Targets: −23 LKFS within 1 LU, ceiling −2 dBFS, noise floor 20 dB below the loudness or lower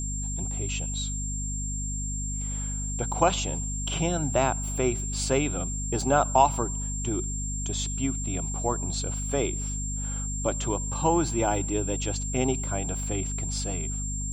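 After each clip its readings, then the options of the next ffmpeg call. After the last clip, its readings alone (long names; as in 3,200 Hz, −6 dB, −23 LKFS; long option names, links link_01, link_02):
mains hum 50 Hz; hum harmonics up to 250 Hz; level of the hum −30 dBFS; interfering tone 7,400 Hz; level of the tone −33 dBFS; integrated loudness −28.0 LKFS; sample peak −6.5 dBFS; target loudness −23.0 LKFS
→ -af "bandreject=frequency=50:width_type=h:width=6,bandreject=frequency=100:width_type=h:width=6,bandreject=frequency=150:width_type=h:width=6,bandreject=frequency=200:width_type=h:width=6,bandreject=frequency=250:width_type=h:width=6"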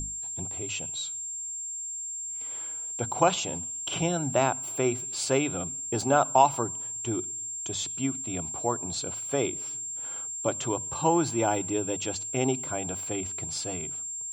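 mains hum none found; interfering tone 7,400 Hz; level of the tone −33 dBFS
→ -af "bandreject=frequency=7400:width=30"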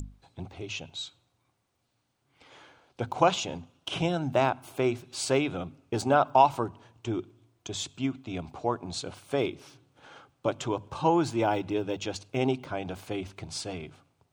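interfering tone none found; integrated loudness −29.5 LKFS; sample peak −7.0 dBFS; target loudness −23.0 LKFS
→ -af "volume=6.5dB,alimiter=limit=-2dB:level=0:latency=1"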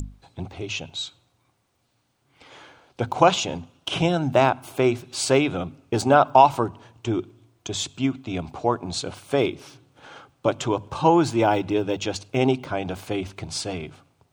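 integrated loudness −23.5 LKFS; sample peak −2.0 dBFS; background noise floor −69 dBFS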